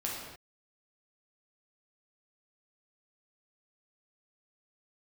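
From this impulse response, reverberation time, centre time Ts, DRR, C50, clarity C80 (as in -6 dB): no single decay rate, 70 ms, -4.5 dB, 0.5 dB, 3.0 dB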